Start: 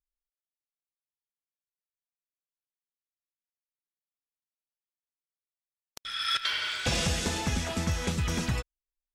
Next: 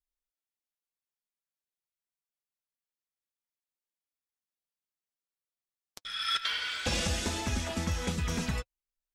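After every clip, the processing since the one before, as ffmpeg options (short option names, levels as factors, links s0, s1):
-af "flanger=delay=3:depth=2.6:regen=-43:speed=0.27:shape=triangular,volume=1.19"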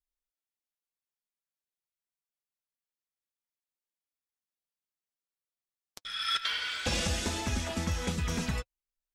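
-af anull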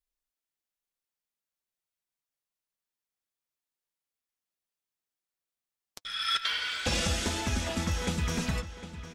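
-filter_complex "[0:a]asplit=2[s0][s1];[s1]adelay=756,lowpass=f=4900:p=1,volume=0.237,asplit=2[s2][s3];[s3]adelay=756,lowpass=f=4900:p=1,volume=0.41,asplit=2[s4][s5];[s5]adelay=756,lowpass=f=4900:p=1,volume=0.41,asplit=2[s6][s7];[s7]adelay=756,lowpass=f=4900:p=1,volume=0.41[s8];[s0][s2][s4][s6][s8]amix=inputs=5:normalize=0,volume=1.19"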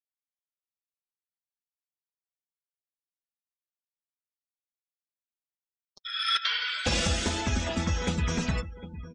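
-af "afftdn=nr=34:nf=-43,volume=1.33"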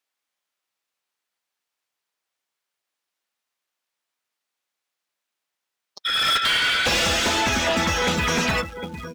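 -filter_complex "[0:a]acrusher=bits=6:mode=log:mix=0:aa=0.000001,asplit=2[s0][s1];[s1]highpass=f=720:p=1,volume=17.8,asoftclip=type=tanh:threshold=0.266[s2];[s0][s2]amix=inputs=2:normalize=0,lowpass=f=3500:p=1,volume=0.501"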